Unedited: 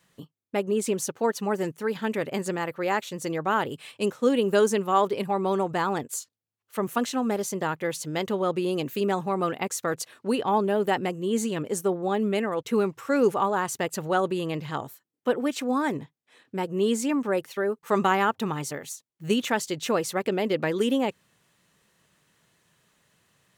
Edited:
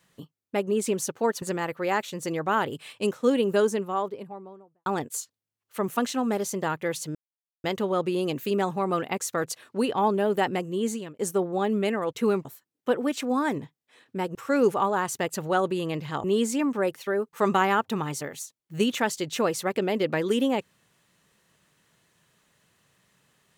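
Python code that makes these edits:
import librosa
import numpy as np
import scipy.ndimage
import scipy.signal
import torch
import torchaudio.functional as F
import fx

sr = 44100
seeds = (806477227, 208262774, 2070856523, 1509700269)

y = fx.studio_fade_out(x, sr, start_s=4.18, length_s=1.67)
y = fx.edit(y, sr, fx.cut(start_s=1.42, length_s=0.99),
    fx.insert_silence(at_s=8.14, length_s=0.49),
    fx.fade_out_span(start_s=11.13, length_s=0.56, curve='qsin'),
    fx.move(start_s=12.95, length_s=1.89, to_s=16.74), tone=tone)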